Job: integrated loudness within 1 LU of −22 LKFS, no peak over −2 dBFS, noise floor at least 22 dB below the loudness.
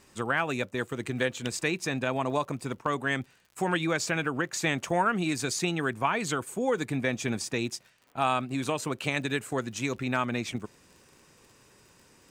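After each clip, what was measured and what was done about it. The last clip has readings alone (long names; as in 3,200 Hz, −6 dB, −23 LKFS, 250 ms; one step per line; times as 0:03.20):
crackle rate 43 per second; integrated loudness −29.5 LKFS; sample peak −13.0 dBFS; target loudness −22.0 LKFS
→ click removal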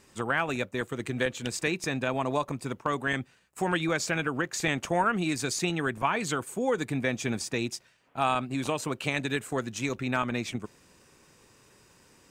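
crackle rate 0.16 per second; integrated loudness −30.0 LKFS; sample peak −13.0 dBFS; target loudness −22.0 LKFS
→ level +8 dB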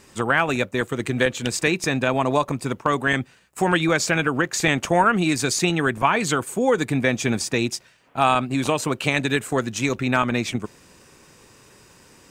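integrated loudness −22.0 LKFS; sample peak −5.0 dBFS; background noise floor −53 dBFS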